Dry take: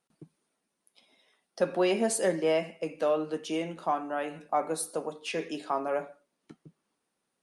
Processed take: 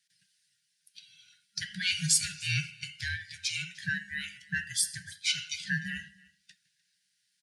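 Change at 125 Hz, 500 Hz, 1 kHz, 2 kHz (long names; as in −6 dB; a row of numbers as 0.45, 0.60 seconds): +7.0 dB, below −40 dB, below −25 dB, +7.5 dB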